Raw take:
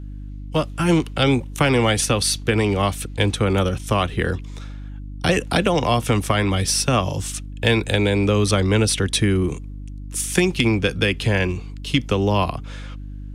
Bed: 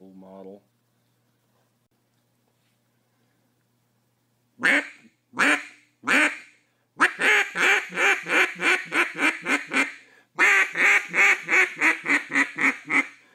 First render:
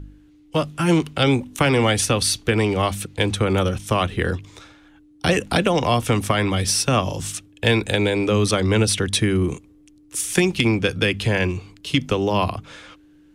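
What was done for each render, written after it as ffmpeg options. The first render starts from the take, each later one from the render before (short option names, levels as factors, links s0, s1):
-af "bandreject=f=50:t=h:w=4,bandreject=f=100:t=h:w=4,bandreject=f=150:t=h:w=4,bandreject=f=200:t=h:w=4,bandreject=f=250:t=h:w=4"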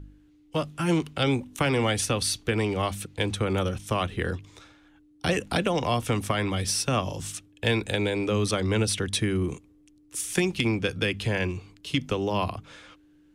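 -af "volume=0.473"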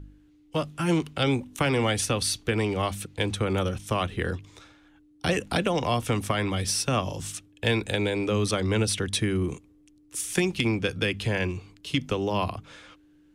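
-af anull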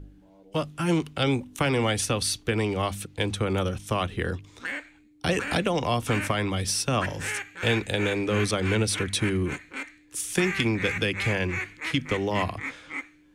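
-filter_complex "[1:a]volume=0.211[s0];[0:a][s0]amix=inputs=2:normalize=0"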